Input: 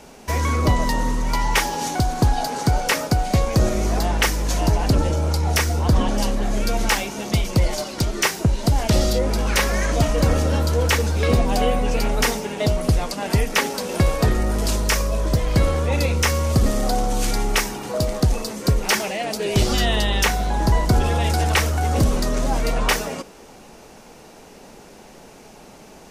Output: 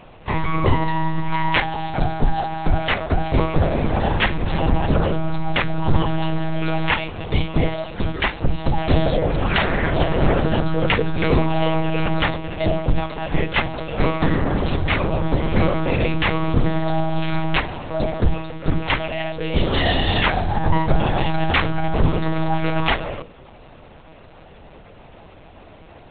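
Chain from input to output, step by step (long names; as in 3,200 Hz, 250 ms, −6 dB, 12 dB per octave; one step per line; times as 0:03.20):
pitch-shifted copies added +3 semitones −12 dB
one-pitch LPC vocoder at 8 kHz 160 Hz
mains-hum notches 60/120/180/240/300/360/420/480 Hz
level +1 dB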